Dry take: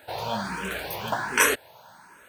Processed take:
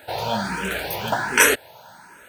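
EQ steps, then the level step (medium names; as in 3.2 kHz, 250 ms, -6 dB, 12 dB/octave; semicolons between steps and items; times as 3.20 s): band-stop 1.1 kHz, Q 6.7; +5.5 dB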